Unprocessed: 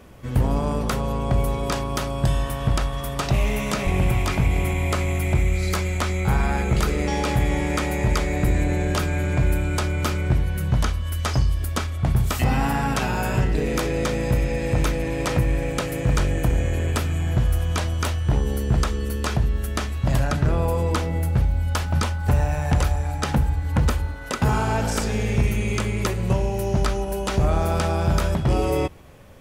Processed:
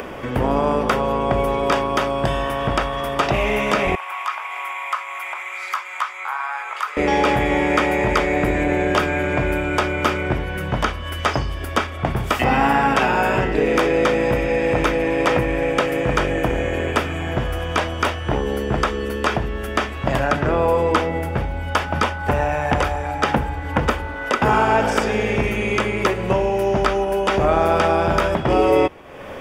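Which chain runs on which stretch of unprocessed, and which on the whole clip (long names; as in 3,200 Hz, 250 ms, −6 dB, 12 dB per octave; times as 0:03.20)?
0:03.95–0:06.97: four-pole ladder high-pass 960 Hz, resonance 60% + high-shelf EQ 8,600 Hz +5 dB
whole clip: three-way crossover with the lows and the highs turned down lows −15 dB, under 260 Hz, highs −15 dB, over 3,800 Hz; notch filter 4,100 Hz, Q 6.4; upward compression, threshold −31 dBFS; level +9 dB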